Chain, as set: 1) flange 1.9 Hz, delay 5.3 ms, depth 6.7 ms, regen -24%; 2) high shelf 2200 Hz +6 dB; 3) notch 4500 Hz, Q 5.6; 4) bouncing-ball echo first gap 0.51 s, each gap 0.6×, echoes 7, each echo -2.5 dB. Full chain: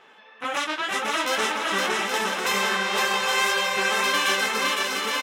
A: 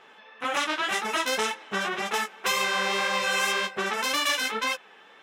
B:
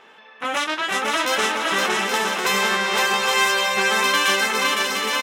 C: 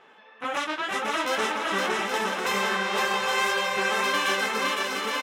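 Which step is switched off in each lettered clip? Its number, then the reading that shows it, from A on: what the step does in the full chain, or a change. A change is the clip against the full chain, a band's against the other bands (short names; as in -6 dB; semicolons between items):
4, loudness change -3.5 LU; 1, loudness change +3.5 LU; 2, 8 kHz band -4.5 dB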